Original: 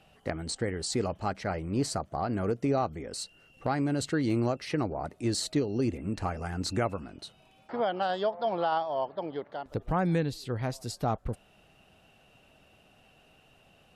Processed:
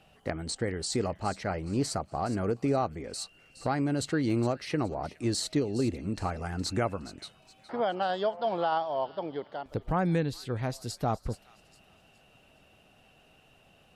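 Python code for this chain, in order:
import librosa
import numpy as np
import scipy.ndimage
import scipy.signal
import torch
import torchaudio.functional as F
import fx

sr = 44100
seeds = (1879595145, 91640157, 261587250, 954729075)

y = fx.echo_wet_highpass(x, sr, ms=416, feedback_pct=34, hz=2300.0, wet_db=-13.5)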